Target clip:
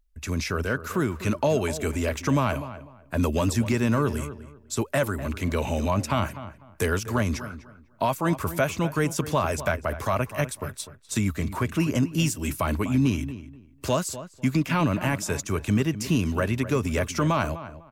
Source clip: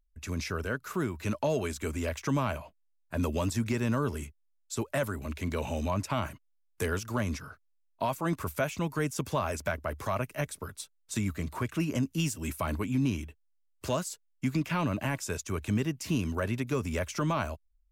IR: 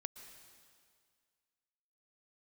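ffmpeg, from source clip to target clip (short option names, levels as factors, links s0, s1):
-filter_complex "[0:a]asplit=2[s0][s1];[s1]adelay=249,lowpass=f=2000:p=1,volume=0.224,asplit=2[s2][s3];[s3]adelay=249,lowpass=f=2000:p=1,volume=0.23,asplit=2[s4][s5];[s5]adelay=249,lowpass=f=2000:p=1,volume=0.23[s6];[s0][s2][s4][s6]amix=inputs=4:normalize=0,volume=2"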